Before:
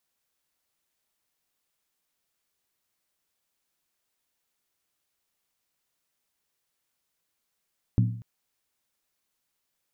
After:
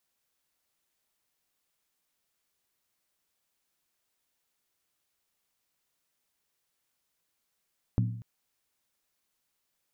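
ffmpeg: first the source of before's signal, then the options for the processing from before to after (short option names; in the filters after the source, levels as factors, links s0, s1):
-f lavfi -i "aevalsrc='0.158*pow(10,-3*t/0.57)*sin(2*PI*115*t)+0.0794*pow(10,-3*t/0.451)*sin(2*PI*183.3*t)+0.0398*pow(10,-3*t/0.39)*sin(2*PI*245.6*t)+0.02*pow(10,-3*t/0.376)*sin(2*PI*264*t)+0.01*pow(10,-3*t/0.35)*sin(2*PI*305.1*t)':d=0.24:s=44100"
-af "acompressor=threshold=0.0251:ratio=1.5"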